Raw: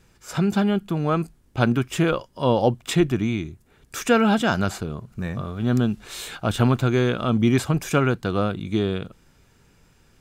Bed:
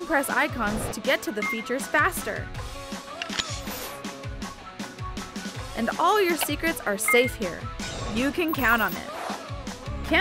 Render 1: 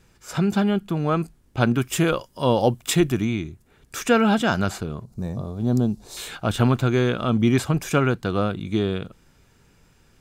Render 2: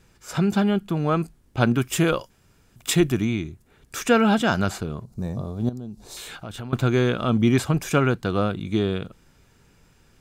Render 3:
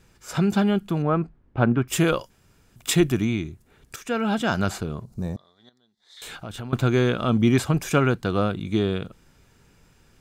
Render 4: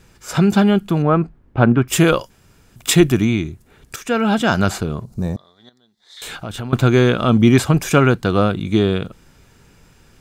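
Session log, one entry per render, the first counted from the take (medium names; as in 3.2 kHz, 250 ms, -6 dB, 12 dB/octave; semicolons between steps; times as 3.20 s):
1.78–3.25 s: treble shelf 6.7 kHz +11.5 dB; 5.04–6.17 s: high-order bell 2 kHz -14 dB
2.30–2.76 s: room tone; 5.69–6.73 s: compression 4:1, threshold -34 dBFS
1.02–1.88 s: low-pass 1.8 kHz; 3.96–4.70 s: fade in, from -14 dB; 5.36–6.22 s: two resonant band-passes 2.6 kHz, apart 0.85 oct
trim +7 dB; peak limiter -1 dBFS, peak gain reduction 1 dB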